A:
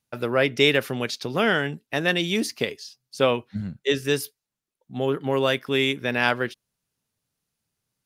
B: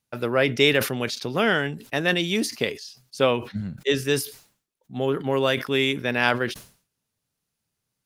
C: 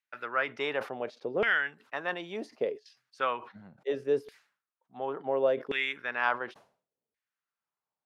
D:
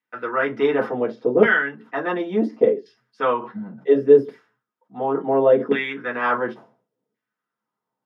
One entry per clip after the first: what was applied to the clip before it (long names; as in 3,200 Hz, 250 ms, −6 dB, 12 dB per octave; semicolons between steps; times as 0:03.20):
level that may fall only so fast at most 130 dB per second
auto-filter band-pass saw down 0.7 Hz 430–2,000 Hz
convolution reverb RT60 0.15 s, pre-delay 3 ms, DRR −4.5 dB; level −6.5 dB